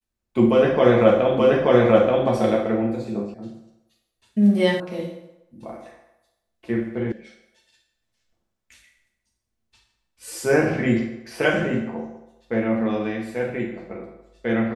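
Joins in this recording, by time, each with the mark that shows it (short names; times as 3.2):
1.39 repeat of the last 0.88 s
3.34 sound cut off
4.8 sound cut off
7.12 sound cut off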